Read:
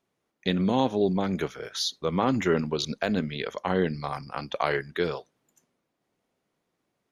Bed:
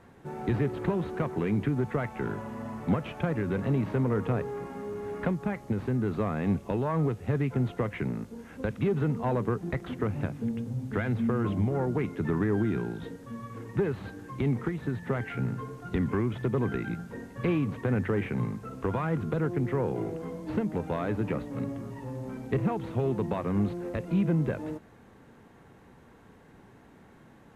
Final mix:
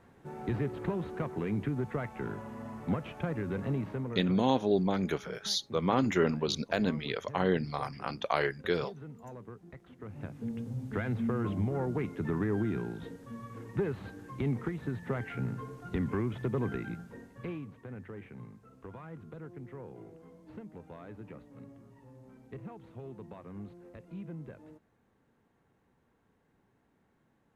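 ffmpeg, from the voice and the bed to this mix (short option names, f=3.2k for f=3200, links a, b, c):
-filter_complex "[0:a]adelay=3700,volume=-3dB[a];[1:a]volume=9.5dB,afade=t=out:st=3.69:d=0.66:silence=0.211349,afade=t=in:st=9.99:d=0.65:silence=0.188365,afade=t=out:st=16.67:d=1.06:silence=0.223872[b];[a][b]amix=inputs=2:normalize=0"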